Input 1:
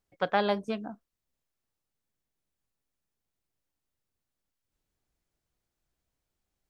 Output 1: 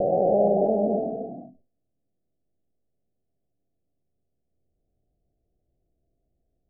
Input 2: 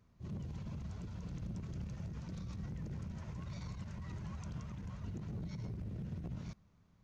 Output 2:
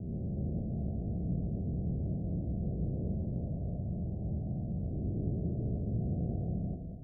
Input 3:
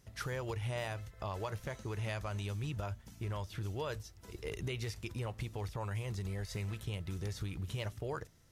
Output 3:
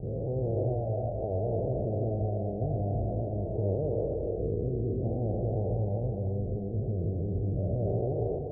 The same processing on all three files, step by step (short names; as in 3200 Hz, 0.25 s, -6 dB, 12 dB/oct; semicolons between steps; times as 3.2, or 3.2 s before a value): spectral dilation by 0.48 s; steep low-pass 740 Hz 96 dB/oct; non-linear reverb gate 0.36 s rising, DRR 3.5 dB; sustainer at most 140 dB/s; gain +2 dB